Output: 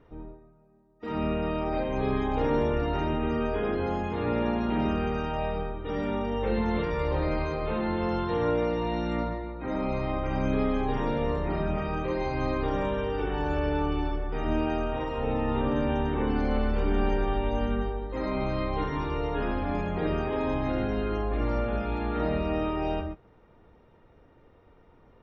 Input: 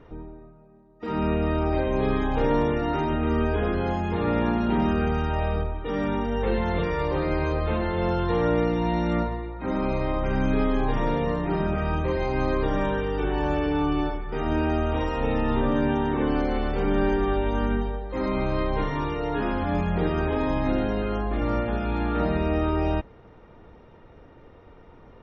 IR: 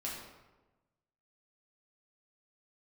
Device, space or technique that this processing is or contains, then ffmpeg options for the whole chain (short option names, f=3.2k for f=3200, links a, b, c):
keyed gated reverb: -filter_complex "[0:a]asettb=1/sr,asplit=3[a][b][c];[a]atrim=end=14.864[d];[b]atrim=start=14.86:end=15.55,asetpts=PTS-STARTPTS,afade=t=in:d=0.004:c=qsin,afade=t=out:st=0.686:d=0.004:c=qsin,highshelf=f=4.3k:g=-11[e];[c]atrim=start=15.546[f];[d][e]acrossfade=d=0.004:c1=hsin:c2=qsin[g];[g][f]acrossfade=d=0.004:c1=qsin:c2=hsin,asplit=3[h][i][j];[1:a]atrim=start_sample=2205[k];[i][k]afir=irnorm=-1:irlink=0[l];[j]apad=whole_len=1112222[m];[l][m]sidechaingate=range=-33dB:threshold=-40dB:ratio=16:detection=peak,volume=-0.5dB[n];[h][n]amix=inputs=2:normalize=0,volume=-8dB"